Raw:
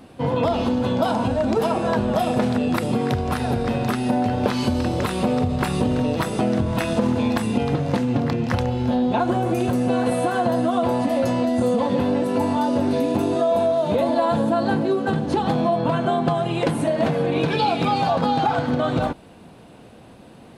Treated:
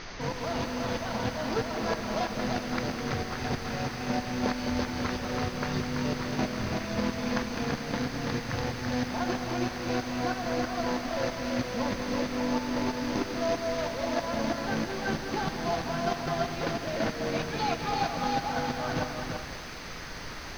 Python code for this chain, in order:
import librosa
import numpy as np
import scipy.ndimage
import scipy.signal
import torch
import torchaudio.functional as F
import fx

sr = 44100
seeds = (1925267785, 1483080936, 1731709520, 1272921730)

y = fx.quant_companded(x, sr, bits=4)
y = fx.tremolo_shape(y, sr, shape='saw_up', hz=3.1, depth_pct=85)
y = fx.dmg_noise_colour(y, sr, seeds[0], colour='pink', level_db=-33.0)
y = scipy.signal.sosfilt(scipy.signal.cheby1(6, 6, 6400.0, 'lowpass', fs=sr, output='sos'), y)
y = y + 10.0 ** (-4.5 / 20.0) * np.pad(y, (int(334 * sr / 1000.0), 0))[:len(y)]
y = fx.echo_crushed(y, sr, ms=205, feedback_pct=55, bits=7, wet_db=-9.5)
y = y * librosa.db_to_amplitude(-3.5)